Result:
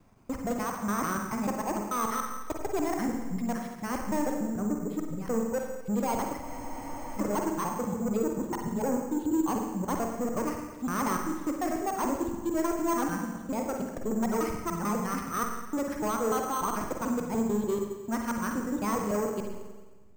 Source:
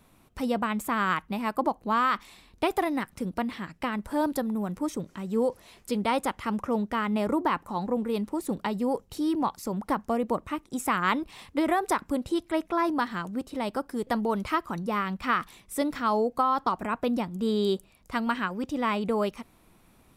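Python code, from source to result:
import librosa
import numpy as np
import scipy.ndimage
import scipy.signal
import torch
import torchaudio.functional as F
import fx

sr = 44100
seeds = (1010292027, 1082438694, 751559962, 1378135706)

p1 = fx.local_reverse(x, sr, ms=147.0)
p2 = fx.backlash(p1, sr, play_db=-25.0)
p3 = p1 + (p2 * 10.0 ** (-5.0 / 20.0))
p4 = fx.dereverb_blind(p3, sr, rt60_s=1.9)
p5 = 10.0 ** (-25.0 / 20.0) * np.tanh(p4 / 10.0 ** (-25.0 / 20.0))
p6 = fx.air_absorb(p5, sr, metres=400.0)
p7 = fx.rev_spring(p6, sr, rt60_s=1.3, pass_ms=(44, 53), chirp_ms=45, drr_db=2.0)
p8 = np.repeat(p7[::6], 6)[:len(p7)]
y = fx.spec_freeze(p8, sr, seeds[0], at_s=6.43, hold_s=0.76)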